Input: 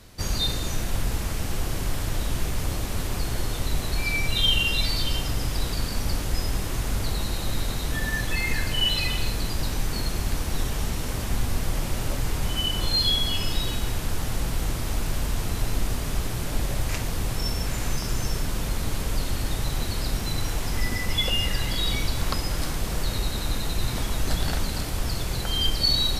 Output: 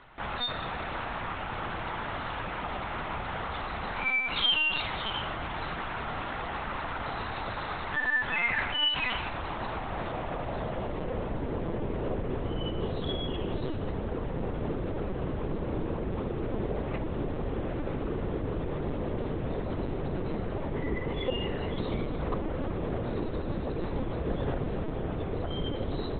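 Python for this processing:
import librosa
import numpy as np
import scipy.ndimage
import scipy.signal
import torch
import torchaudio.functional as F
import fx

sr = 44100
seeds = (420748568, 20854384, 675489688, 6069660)

y = fx.hum_notches(x, sr, base_hz=60, count=4)
y = fx.filter_sweep_bandpass(y, sr, from_hz=1100.0, to_hz=360.0, start_s=9.17, end_s=11.71, q=1.2)
y = fx.lpc_vocoder(y, sr, seeds[0], excitation='pitch_kept', order=10)
y = F.gain(torch.from_numpy(y), 7.0).numpy()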